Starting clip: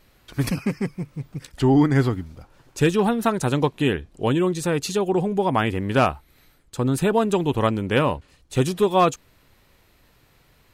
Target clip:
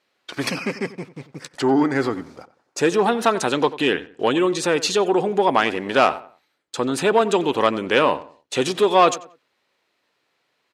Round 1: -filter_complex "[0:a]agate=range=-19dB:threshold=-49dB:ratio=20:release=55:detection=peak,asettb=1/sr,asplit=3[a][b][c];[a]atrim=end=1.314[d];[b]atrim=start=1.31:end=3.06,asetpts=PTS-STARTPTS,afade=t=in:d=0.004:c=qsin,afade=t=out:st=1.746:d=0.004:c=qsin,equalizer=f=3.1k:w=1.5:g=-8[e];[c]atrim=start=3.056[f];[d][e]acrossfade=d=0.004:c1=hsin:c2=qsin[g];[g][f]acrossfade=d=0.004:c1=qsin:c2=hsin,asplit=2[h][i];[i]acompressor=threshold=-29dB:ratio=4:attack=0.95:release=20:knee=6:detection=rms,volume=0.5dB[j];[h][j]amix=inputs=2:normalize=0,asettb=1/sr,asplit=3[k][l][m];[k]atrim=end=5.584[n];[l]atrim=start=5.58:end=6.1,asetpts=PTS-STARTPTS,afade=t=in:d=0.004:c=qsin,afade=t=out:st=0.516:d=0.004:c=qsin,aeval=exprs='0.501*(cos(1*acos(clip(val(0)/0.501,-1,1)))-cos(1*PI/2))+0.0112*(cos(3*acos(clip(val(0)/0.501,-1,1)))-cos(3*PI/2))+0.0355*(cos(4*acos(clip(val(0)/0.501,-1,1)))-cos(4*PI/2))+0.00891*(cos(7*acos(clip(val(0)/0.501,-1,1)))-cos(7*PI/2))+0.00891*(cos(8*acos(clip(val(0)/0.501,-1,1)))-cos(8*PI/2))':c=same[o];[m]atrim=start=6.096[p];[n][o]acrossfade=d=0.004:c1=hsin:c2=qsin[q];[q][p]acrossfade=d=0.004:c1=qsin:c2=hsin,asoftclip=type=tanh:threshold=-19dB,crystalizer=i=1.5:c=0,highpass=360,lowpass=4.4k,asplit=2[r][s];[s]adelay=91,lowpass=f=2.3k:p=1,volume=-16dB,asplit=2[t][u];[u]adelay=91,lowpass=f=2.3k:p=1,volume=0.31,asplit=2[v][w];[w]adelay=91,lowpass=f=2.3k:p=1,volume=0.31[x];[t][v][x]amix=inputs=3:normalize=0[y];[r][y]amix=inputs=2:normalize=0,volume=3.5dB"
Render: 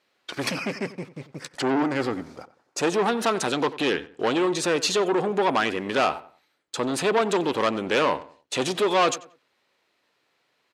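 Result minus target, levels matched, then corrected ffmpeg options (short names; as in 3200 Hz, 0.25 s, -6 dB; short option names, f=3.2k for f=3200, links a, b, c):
soft clip: distortion +13 dB
-filter_complex "[0:a]agate=range=-19dB:threshold=-49dB:ratio=20:release=55:detection=peak,asettb=1/sr,asplit=3[a][b][c];[a]atrim=end=1.314[d];[b]atrim=start=1.31:end=3.06,asetpts=PTS-STARTPTS,afade=t=in:d=0.004:c=qsin,afade=t=out:st=1.746:d=0.004:c=qsin,equalizer=f=3.1k:w=1.5:g=-8[e];[c]atrim=start=3.056[f];[d][e]acrossfade=d=0.004:c1=hsin:c2=qsin[g];[g][f]acrossfade=d=0.004:c1=qsin:c2=hsin,asplit=2[h][i];[i]acompressor=threshold=-29dB:ratio=4:attack=0.95:release=20:knee=6:detection=rms,volume=0.5dB[j];[h][j]amix=inputs=2:normalize=0,asettb=1/sr,asplit=3[k][l][m];[k]atrim=end=5.584[n];[l]atrim=start=5.58:end=6.1,asetpts=PTS-STARTPTS,afade=t=in:d=0.004:c=qsin,afade=t=out:st=0.516:d=0.004:c=qsin,aeval=exprs='0.501*(cos(1*acos(clip(val(0)/0.501,-1,1)))-cos(1*PI/2))+0.0112*(cos(3*acos(clip(val(0)/0.501,-1,1)))-cos(3*PI/2))+0.0355*(cos(4*acos(clip(val(0)/0.501,-1,1)))-cos(4*PI/2))+0.00891*(cos(7*acos(clip(val(0)/0.501,-1,1)))-cos(7*PI/2))+0.00891*(cos(8*acos(clip(val(0)/0.501,-1,1)))-cos(8*PI/2))':c=same[o];[m]atrim=start=6.096[p];[n][o]acrossfade=d=0.004:c1=hsin:c2=qsin[q];[q][p]acrossfade=d=0.004:c1=qsin:c2=hsin,asoftclip=type=tanh:threshold=-8dB,crystalizer=i=1.5:c=0,highpass=360,lowpass=4.4k,asplit=2[r][s];[s]adelay=91,lowpass=f=2.3k:p=1,volume=-16dB,asplit=2[t][u];[u]adelay=91,lowpass=f=2.3k:p=1,volume=0.31,asplit=2[v][w];[w]adelay=91,lowpass=f=2.3k:p=1,volume=0.31[x];[t][v][x]amix=inputs=3:normalize=0[y];[r][y]amix=inputs=2:normalize=0,volume=3.5dB"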